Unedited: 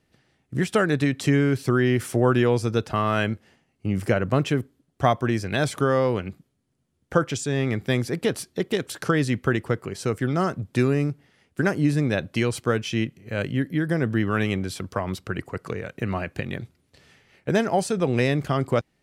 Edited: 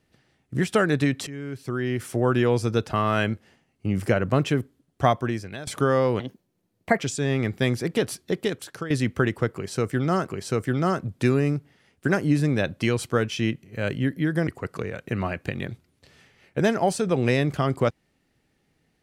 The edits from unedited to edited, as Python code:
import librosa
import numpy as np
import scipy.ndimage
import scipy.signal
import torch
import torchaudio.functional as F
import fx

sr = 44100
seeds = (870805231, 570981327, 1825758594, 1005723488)

y = fx.edit(x, sr, fx.fade_in_from(start_s=1.27, length_s=1.35, floor_db=-20.0),
    fx.fade_out_to(start_s=5.09, length_s=0.58, floor_db=-20.0),
    fx.speed_span(start_s=6.2, length_s=1.07, speed=1.35),
    fx.fade_out_to(start_s=8.66, length_s=0.52, floor_db=-14.5),
    fx.repeat(start_s=9.82, length_s=0.74, count=2),
    fx.cut(start_s=14.01, length_s=1.37), tone=tone)